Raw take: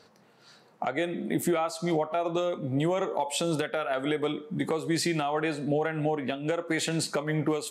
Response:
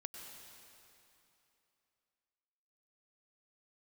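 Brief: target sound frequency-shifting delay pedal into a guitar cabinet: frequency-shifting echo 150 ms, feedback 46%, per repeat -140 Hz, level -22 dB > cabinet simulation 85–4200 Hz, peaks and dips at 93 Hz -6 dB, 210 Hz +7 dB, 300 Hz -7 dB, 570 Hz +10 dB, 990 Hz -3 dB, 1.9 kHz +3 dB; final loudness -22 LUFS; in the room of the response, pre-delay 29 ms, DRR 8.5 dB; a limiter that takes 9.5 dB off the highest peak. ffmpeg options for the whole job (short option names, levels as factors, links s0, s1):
-filter_complex "[0:a]alimiter=limit=0.0794:level=0:latency=1,asplit=2[s0][s1];[1:a]atrim=start_sample=2205,adelay=29[s2];[s1][s2]afir=irnorm=-1:irlink=0,volume=0.531[s3];[s0][s3]amix=inputs=2:normalize=0,asplit=4[s4][s5][s6][s7];[s5]adelay=150,afreqshift=-140,volume=0.0794[s8];[s6]adelay=300,afreqshift=-280,volume=0.0367[s9];[s7]adelay=450,afreqshift=-420,volume=0.0168[s10];[s4][s8][s9][s10]amix=inputs=4:normalize=0,highpass=85,equalizer=f=93:t=q:w=4:g=-6,equalizer=f=210:t=q:w=4:g=7,equalizer=f=300:t=q:w=4:g=-7,equalizer=f=570:t=q:w=4:g=10,equalizer=f=990:t=q:w=4:g=-3,equalizer=f=1900:t=q:w=4:g=3,lowpass=f=4200:w=0.5412,lowpass=f=4200:w=1.3066,volume=2.37"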